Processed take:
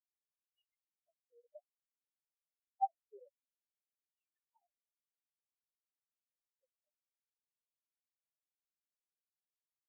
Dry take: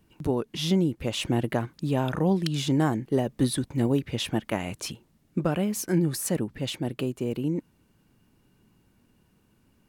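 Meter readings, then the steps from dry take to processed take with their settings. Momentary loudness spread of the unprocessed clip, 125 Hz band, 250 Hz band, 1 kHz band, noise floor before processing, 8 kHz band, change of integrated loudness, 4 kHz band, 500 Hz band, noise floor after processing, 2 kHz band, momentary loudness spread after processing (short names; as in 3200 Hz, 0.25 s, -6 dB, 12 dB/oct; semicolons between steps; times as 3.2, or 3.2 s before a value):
7 LU, under -40 dB, under -40 dB, -9.0 dB, -65 dBFS, under -40 dB, -12.0 dB, under -40 dB, -36.0 dB, under -85 dBFS, under -40 dB, 0 LU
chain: chorus voices 6, 0.43 Hz, delay 12 ms, depth 3.3 ms; wah 0.56 Hz 480–3300 Hz, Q 13; spectral expander 4:1; gain +4 dB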